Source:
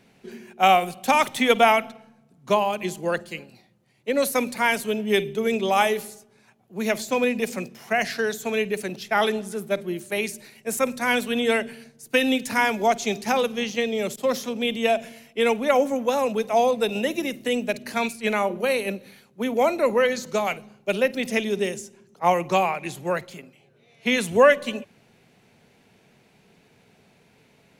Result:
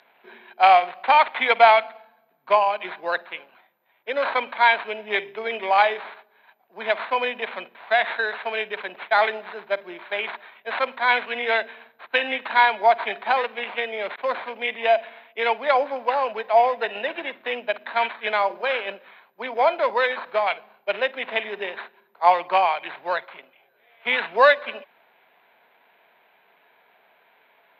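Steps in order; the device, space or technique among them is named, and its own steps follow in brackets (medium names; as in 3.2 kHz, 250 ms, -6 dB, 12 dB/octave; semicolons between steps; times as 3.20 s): toy sound module (decimation joined by straight lines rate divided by 8×; class-D stage that switches slowly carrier 14 kHz; cabinet simulation 630–4700 Hz, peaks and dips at 670 Hz +6 dB, 960 Hz +8 dB, 1.6 kHz +7 dB, 2.3 kHz +6 dB, 3.9 kHz +9 dB)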